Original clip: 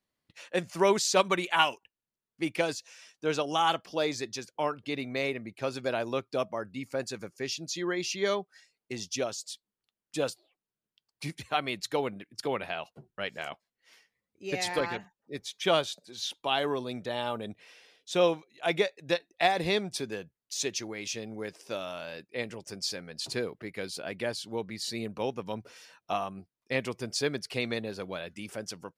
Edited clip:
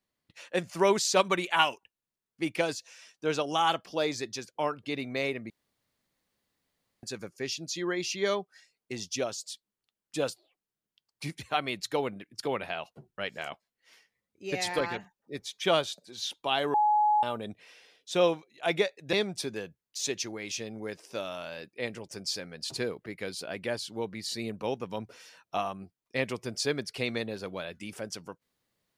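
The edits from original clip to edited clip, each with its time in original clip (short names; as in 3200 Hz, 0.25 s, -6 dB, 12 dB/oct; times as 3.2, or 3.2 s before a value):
5.5–7.03 room tone
16.74–17.23 bleep 843 Hz -20.5 dBFS
19.13–19.69 cut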